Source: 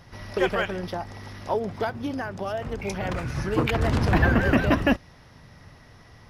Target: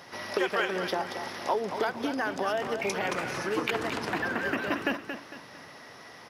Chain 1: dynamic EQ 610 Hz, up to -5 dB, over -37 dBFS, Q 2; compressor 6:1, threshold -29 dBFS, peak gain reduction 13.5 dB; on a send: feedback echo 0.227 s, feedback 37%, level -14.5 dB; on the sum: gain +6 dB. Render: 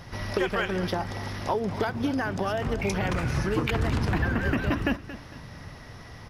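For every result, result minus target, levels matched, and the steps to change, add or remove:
echo-to-direct -6 dB; 250 Hz band +3.0 dB
change: feedback echo 0.227 s, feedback 37%, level -8.5 dB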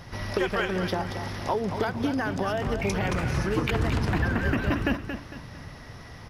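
250 Hz band +3.0 dB
add after compressor: HPF 340 Hz 12 dB/oct

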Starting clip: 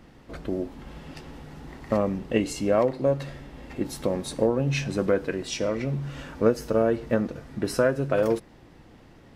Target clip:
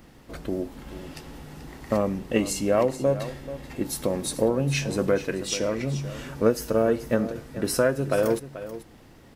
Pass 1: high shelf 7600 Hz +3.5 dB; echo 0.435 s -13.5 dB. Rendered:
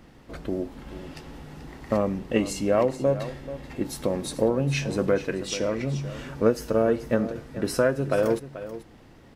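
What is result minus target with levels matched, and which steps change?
8000 Hz band -4.5 dB
change: high shelf 7600 Hz +13.5 dB

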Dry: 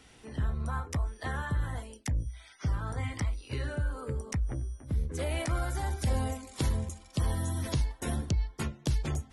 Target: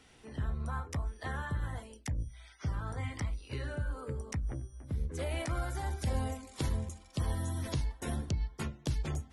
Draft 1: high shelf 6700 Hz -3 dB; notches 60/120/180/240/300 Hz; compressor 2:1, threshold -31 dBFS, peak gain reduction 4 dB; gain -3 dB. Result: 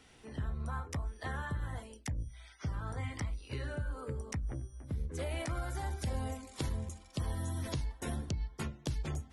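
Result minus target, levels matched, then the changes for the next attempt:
compressor: peak gain reduction +4 dB
remove: compressor 2:1, threshold -31 dBFS, peak gain reduction 4 dB

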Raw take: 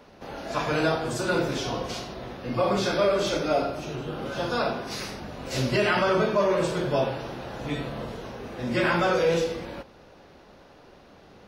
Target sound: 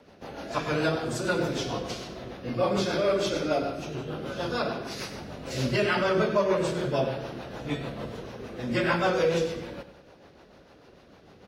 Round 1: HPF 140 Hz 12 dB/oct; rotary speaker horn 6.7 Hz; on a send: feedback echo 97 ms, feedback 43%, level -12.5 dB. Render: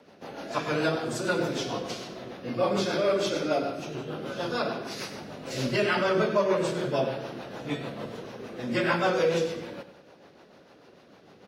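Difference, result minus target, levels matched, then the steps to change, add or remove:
125 Hz band -2.5 dB
change: HPF 44 Hz 12 dB/oct

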